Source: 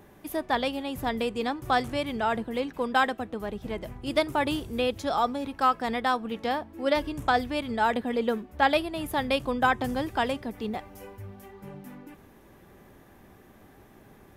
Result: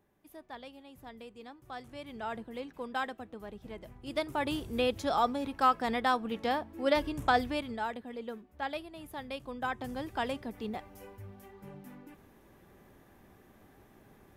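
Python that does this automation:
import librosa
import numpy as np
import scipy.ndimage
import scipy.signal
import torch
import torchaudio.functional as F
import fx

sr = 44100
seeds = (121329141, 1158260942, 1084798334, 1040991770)

y = fx.gain(x, sr, db=fx.line((1.73, -19.5), (2.26, -11.0), (3.93, -11.0), (4.78, -2.5), (7.5, -2.5), (7.98, -14.0), (9.38, -14.0), (10.36, -5.5)))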